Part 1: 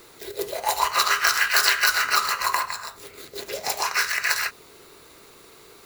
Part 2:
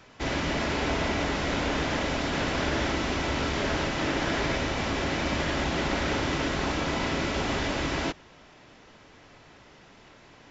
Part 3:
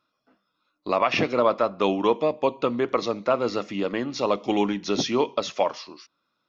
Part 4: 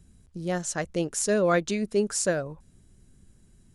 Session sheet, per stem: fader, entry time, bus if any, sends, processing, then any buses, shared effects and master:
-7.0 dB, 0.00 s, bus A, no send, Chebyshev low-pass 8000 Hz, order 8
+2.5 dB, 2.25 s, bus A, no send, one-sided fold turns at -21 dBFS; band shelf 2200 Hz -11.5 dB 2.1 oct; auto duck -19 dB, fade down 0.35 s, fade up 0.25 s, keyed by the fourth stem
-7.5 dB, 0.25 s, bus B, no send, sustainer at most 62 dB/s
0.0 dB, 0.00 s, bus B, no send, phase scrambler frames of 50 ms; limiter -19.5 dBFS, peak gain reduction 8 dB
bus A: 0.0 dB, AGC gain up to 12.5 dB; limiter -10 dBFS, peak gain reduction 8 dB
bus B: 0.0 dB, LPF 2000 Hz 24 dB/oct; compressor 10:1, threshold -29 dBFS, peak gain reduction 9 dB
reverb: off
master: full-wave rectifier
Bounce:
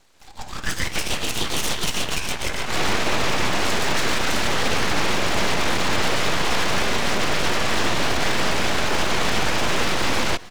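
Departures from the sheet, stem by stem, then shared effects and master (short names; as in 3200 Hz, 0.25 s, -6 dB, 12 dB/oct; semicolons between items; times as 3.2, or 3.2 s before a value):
stem 2: missing band shelf 2200 Hz -11.5 dB 2.1 oct; stem 4 0.0 dB -> -10.5 dB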